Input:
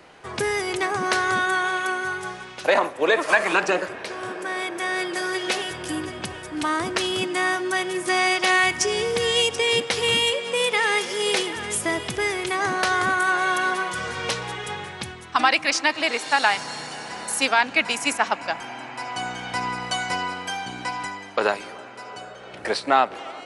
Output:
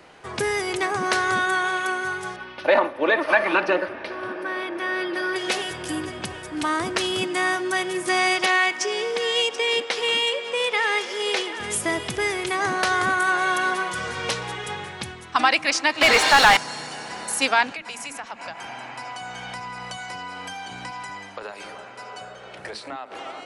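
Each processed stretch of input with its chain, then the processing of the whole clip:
2.36–5.36 s: boxcar filter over 6 samples + comb 3.4 ms, depth 48%
8.46–11.60 s: Bessel high-pass 360 Hz, order 4 + distance through air 66 m
16.01–16.57 s: treble shelf 8.7 kHz -2.5 dB + short-mantissa float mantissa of 4-bit + overdrive pedal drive 26 dB, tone 3.3 kHz, clips at -6 dBFS
17.72–23.15 s: compression 8:1, threshold -30 dBFS + bands offset in time highs, lows 50 ms, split 290 Hz
whole clip: none

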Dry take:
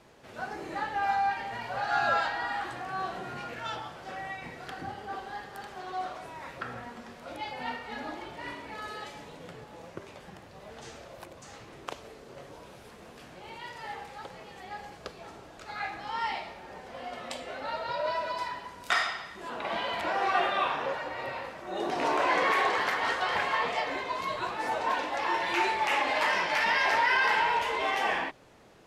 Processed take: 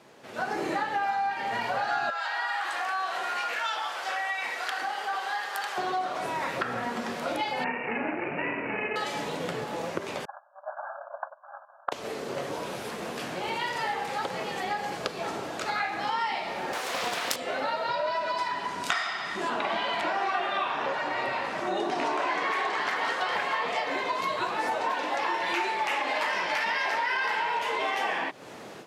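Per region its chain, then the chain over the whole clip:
2.10–5.78 s: high-pass 880 Hz + compression 1.5:1, threshold -40 dBFS
7.64–8.96 s: comb filter that takes the minimum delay 0.38 ms + high-pass 92 Hz 24 dB/octave + careless resampling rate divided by 8×, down none, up filtered
10.25–11.92 s: gate -47 dBFS, range -21 dB + brick-wall FIR band-pass 550–1700 Hz
16.73–17.36 s: high-pass 270 Hz 24 dB/octave + tilt EQ +4 dB/octave + loudspeaker Doppler distortion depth 0.77 ms
17.88–22.96 s: low-pass 9.7 kHz + band-stop 510 Hz, Q 6.5
whole clip: level rider gain up to 11.5 dB; high-pass 160 Hz 12 dB/octave; compression 6:1, threshold -30 dBFS; trim +3 dB

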